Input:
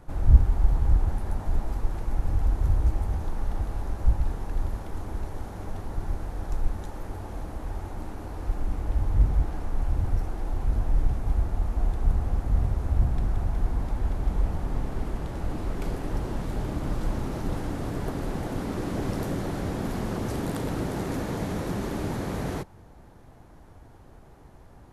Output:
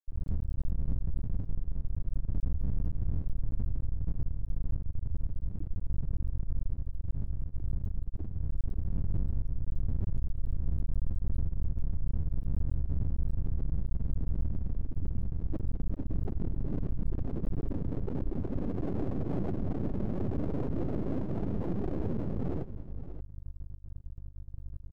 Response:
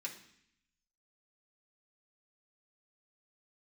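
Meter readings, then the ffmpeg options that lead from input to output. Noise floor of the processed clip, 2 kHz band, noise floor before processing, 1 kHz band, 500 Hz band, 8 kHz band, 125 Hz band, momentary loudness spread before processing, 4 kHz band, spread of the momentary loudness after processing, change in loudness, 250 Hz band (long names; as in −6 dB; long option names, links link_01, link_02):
−44 dBFS, below −15 dB, −50 dBFS, −14.5 dB, −6.5 dB, can't be measured, −5.5 dB, 11 LU, below −20 dB, 5 LU, −6.0 dB, −3.5 dB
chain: -filter_complex "[0:a]aeval=exprs='val(0)+0.00708*(sin(2*PI*50*n/s)+sin(2*PI*2*50*n/s)/2+sin(2*PI*3*50*n/s)/3+sin(2*PI*4*50*n/s)/4+sin(2*PI*5*50*n/s)/5)':channel_layout=same,dynaudnorm=framelen=100:gausssize=3:maxgain=9.5dB,alimiter=limit=-5.5dB:level=0:latency=1:release=416,asoftclip=type=tanh:threshold=-23dB,afftfilt=real='re*gte(hypot(re,im),0.2)':imag='im*gte(hypot(re,im),0.2)':win_size=1024:overlap=0.75,aeval=exprs='max(val(0),0)':channel_layout=same,asplit=2[link_01][link_02];[link_02]aecho=0:1:580:0.2[link_03];[link_01][link_03]amix=inputs=2:normalize=0"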